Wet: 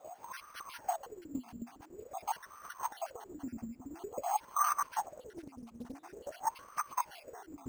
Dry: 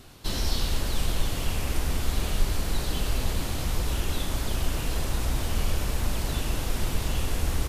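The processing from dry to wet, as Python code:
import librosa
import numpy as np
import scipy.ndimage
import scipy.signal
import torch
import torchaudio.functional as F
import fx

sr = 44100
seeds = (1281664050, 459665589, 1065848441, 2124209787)

y = fx.spec_dropout(x, sr, seeds[0], share_pct=46)
y = fx.over_compress(y, sr, threshold_db=-36.0, ratio=-1.0)
y = fx.quant_dither(y, sr, seeds[1], bits=8, dither='triangular')
y = fx.wah_lfo(y, sr, hz=0.48, low_hz=230.0, high_hz=1200.0, q=15.0)
y = np.repeat(scipy.signal.resample_poly(y, 1, 6), 6)[:len(y)]
y = fx.doppler_dist(y, sr, depth_ms=0.48, at=(4.73, 6.82))
y = F.gain(torch.from_numpy(y), 15.0).numpy()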